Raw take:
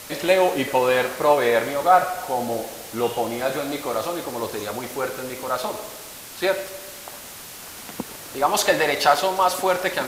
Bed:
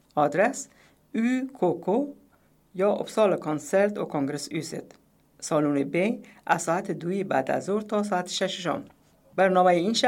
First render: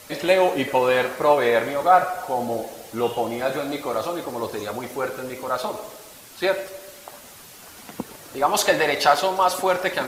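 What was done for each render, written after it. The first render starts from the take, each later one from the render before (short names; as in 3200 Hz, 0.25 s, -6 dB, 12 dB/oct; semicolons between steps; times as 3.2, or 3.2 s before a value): denoiser 7 dB, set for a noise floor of -39 dBFS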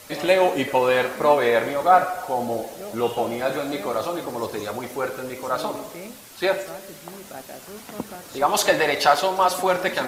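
add bed -14 dB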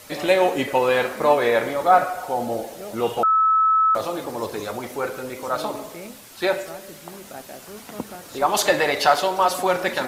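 3.23–3.95 bleep 1300 Hz -14 dBFS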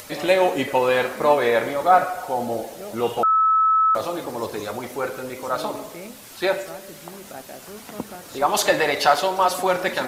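upward compressor, threshold -36 dBFS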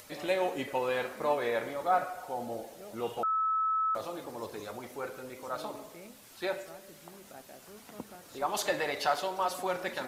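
gain -12 dB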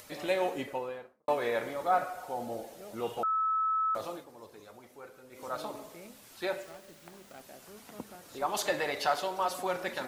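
0.45–1.28 studio fade out; 4.12–5.43 dip -10.5 dB, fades 0.13 s; 6.62–7.41 self-modulated delay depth 0.22 ms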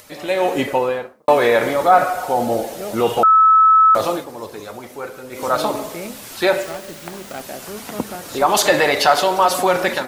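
AGC gain up to 12.5 dB; in parallel at +1 dB: limiter -14.5 dBFS, peak gain reduction 10 dB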